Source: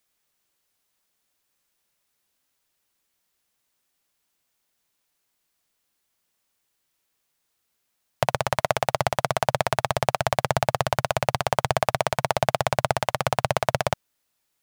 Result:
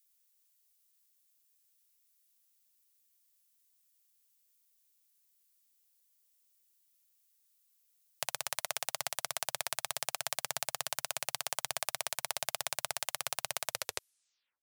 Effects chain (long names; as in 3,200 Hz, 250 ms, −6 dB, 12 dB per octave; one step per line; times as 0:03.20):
turntable brake at the end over 0.95 s
first-order pre-emphasis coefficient 0.97